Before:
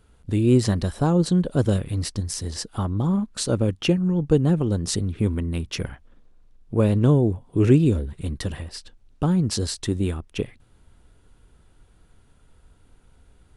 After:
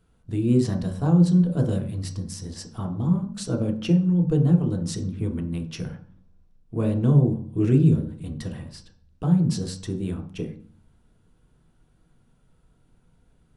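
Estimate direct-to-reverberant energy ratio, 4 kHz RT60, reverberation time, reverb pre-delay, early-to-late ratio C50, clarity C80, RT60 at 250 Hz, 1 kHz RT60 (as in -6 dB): 3.0 dB, 0.40 s, 0.45 s, 3 ms, 10.0 dB, 14.5 dB, 0.80 s, 0.40 s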